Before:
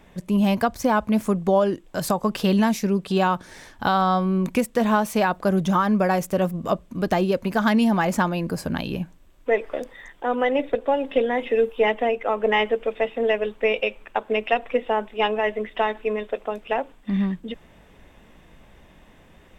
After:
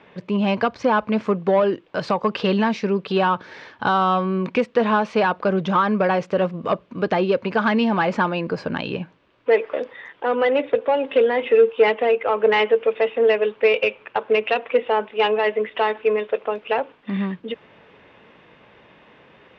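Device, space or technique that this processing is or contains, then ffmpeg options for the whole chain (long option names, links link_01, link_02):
overdrive pedal into a guitar cabinet: -filter_complex "[0:a]asplit=2[link_01][link_02];[link_02]highpass=frequency=720:poles=1,volume=12dB,asoftclip=type=tanh:threshold=-8.5dB[link_03];[link_01][link_03]amix=inputs=2:normalize=0,lowpass=frequency=6800:poles=1,volume=-6dB,highpass=100,equalizer=frequency=120:width_type=q:width=4:gain=6,equalizer=frequency=450:width_type=q:width=4:gain=5,equalizer=frequency=710:width_type=q:width=4:gain=-4,equalizer=frequency=1900:width_type=q:width=4:gain=-3,equalizer=frequency=3500:width_type=q:width=4:gain=-4,lowpass=frequency=4000:width=0.5412,lowpass=frequency=4000:width=1.3066"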